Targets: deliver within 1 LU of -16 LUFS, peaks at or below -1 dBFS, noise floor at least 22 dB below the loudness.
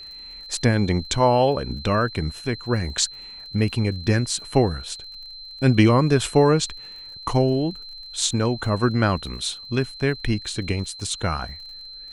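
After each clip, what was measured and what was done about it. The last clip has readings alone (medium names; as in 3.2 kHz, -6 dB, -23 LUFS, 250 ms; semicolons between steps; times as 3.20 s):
tick rate 41 per s; steady tone 4.1 kHz; tone level -37 dBFS; loudness -22.5 LUFS; peak level -3.0 dBFS; loudness target -16.0 LUFS
-> de-click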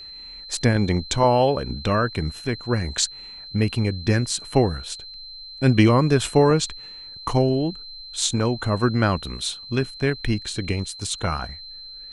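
tick rate 0.082 per s; steady tone 4.1 kHz; tone level -37 dBFS
-> band-stop 4.1 kHz, Q 30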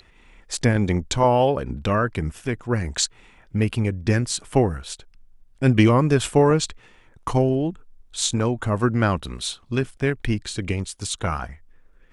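steady tone not found; loudness -22.5 LUFS; peak level -3.0 dBFS; loudness target -16.0 LUFS
-> trim +6.5 dB; peak limiter -1 dBFS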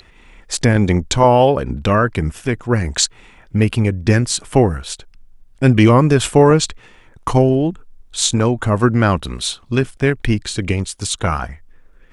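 loudness -16.5 LUFS; peak level -1.0 dBFS; noise floor -48 dBFS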